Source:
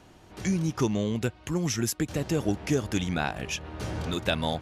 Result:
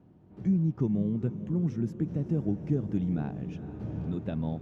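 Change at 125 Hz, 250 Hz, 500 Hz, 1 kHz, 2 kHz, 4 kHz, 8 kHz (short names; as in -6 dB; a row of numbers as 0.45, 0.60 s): +1.0 dB, 0.0 dB, -7.0 dB, -14.0 dB, under -20 dB, under -25 dB, under -30 dB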